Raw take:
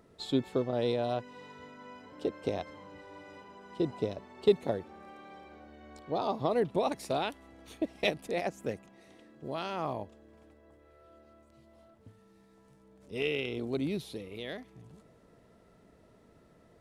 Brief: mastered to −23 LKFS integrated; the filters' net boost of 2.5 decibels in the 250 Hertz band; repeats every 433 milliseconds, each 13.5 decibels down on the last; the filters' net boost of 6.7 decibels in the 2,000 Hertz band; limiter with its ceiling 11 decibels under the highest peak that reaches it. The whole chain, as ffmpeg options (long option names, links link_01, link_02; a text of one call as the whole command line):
ffmpeg -i in.wav -af "equalizer=frequency=250:width_type=o:gain=3,equalizer=frequency=2000:width_type=o:gain=8.5,alimiter=limit=-21.5dB:level=0:latency=1,aecho=1:1:433|866:0.211|0.0444,volume=13dB" out.wav